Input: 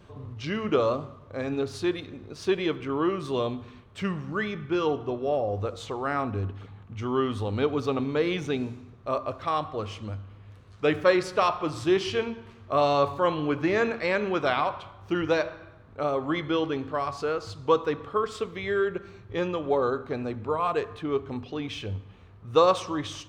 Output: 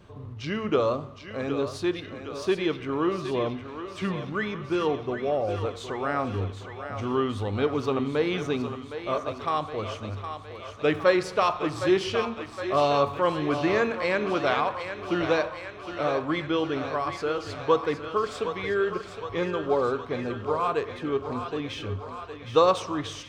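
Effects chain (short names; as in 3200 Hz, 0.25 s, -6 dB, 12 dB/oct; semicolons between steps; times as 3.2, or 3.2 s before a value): 3.09–4.16 treble ducked by the level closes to 2400 Hz, closed at -23 dBFS; thinning echo 0.764 s, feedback 71%, high-pass 420 Hz, level -8.5 dB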